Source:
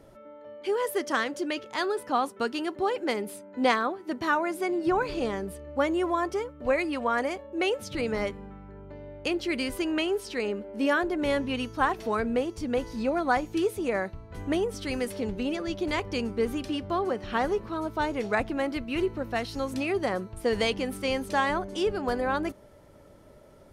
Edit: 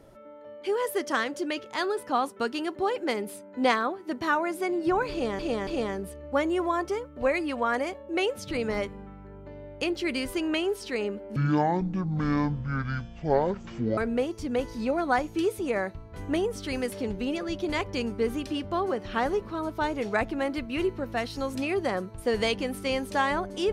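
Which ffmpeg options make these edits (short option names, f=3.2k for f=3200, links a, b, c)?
-filter_complex "[0:a]asplit=5[a][b][c][d][e];[a]atrim=end=5.392[f];[b]atrim=start=5.108:end=5.392[g];[c]atrim=start=5.108:end=10.804[h];[d]atrim=start=10.8:end=12.16,asetpts=PTS-STARTPTS,asetrate=22932,aresample=44100,atrim=end_sample=115338,asetpts=PTS-STARTPTS[i];[e]atrim=start=12.156[j];[f][g]acrossfade=d=0.004:c1=hsin:c2=hsin[k];[k][h]acrossfade=d=0.004:c1=hsin:c2=hsin[l];[l][i]acrossfade=d=0.004:c1=hsin:c2=hsin[m];[m][j]acrossfade=d=0.004:c1=hsin:c2=hsin"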